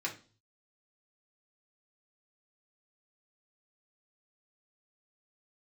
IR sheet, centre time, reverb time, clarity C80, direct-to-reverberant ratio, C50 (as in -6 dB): 15 ms, 0.40 s, 18.5 dB, -2.5 dB, 12.0 dB